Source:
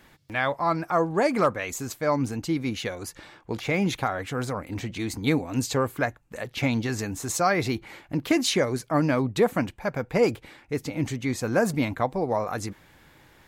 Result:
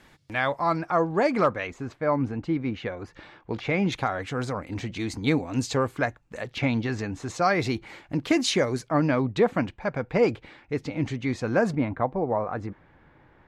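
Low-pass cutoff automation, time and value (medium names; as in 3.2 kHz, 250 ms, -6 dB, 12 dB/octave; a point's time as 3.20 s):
10 kHz
from 0.78 s 5.1 kHz
from 1.67 s 2.1 kHz
from 3.13 s 3.7 kHz
from 3.92 s 6.7 kHz
from 6.58 s 3.7 kHz
from 7.42 s 7.8 kHz
from 8.88 s 4.2 kHz
from 11.75 s 1.6 kHz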